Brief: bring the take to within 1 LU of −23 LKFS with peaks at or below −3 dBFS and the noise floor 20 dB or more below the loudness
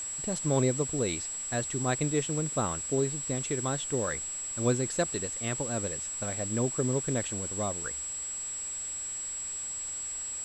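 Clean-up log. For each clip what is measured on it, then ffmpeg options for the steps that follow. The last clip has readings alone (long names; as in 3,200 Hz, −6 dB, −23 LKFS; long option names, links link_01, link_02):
interfering tone 7,700 Hz; level of the tone −34 dBFS; background noise floor −37 dBFS; target noise floor −51 dBFS; integrated loudness −30.5 LKFS; sample peak −14.5 dBFS; target loudness −23.0 LKFS
→ -af "bandreject=frequency=7700:width=30"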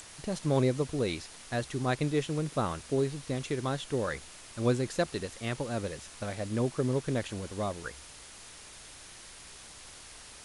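interfering tone none found; background noise floor −50 dBFS; target noise floor −53 dBFS
→ -af "afftdn=noise_reduction=6:noise_floor=-50"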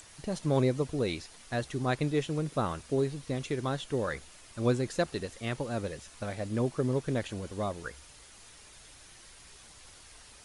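background noise floor −54 dBFS; integrated loudness −32.5 LKFS; sample peak −15.5 dBFS; target loudness −23.0 LKFS
→ -af "volume=9.5dB"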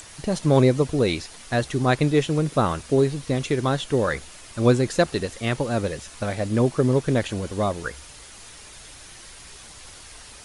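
integrated loudness −23.0 LKFS; sample peak −6.0 dBFS; background noise floor −44 dBFS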